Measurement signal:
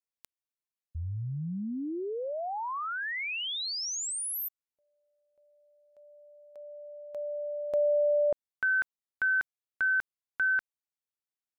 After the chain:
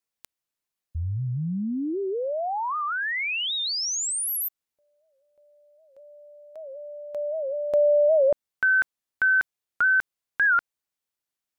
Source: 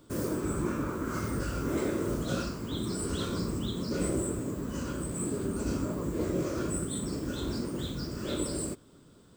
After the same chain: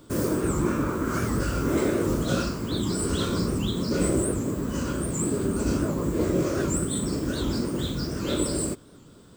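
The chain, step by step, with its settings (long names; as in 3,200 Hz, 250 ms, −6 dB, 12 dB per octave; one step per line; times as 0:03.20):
wow of a warped record 78 rpm, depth 160 cents
level +6.5 dB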